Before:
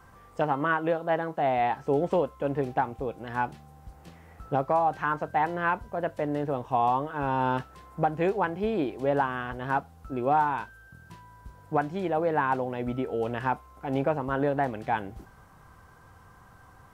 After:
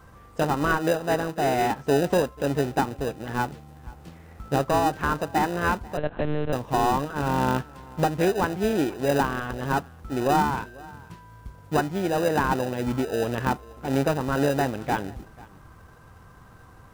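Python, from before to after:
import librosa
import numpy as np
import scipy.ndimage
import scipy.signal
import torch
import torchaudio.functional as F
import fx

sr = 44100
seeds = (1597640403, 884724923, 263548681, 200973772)

p1 = x + 10.0 ** (-22.5 / 20.0) * np.pad(x, (int(490 * sr / 1000.0), 0))[:len(x)]
p2 = fx.sample_hold(p1, sr, seeds[0], rate_hz=1100.0, jitter_pct=0)
p3 = p1 + (p2 * 10.0 ** (-5.0 / 20.0))
p4 = fx.lpc_monotone(p3, sr, seeds[1], pitch_hz=150.0, order=8, at=(5.97, 6.53))
y = p4 * 10.0 ** (1.5 / 20.0)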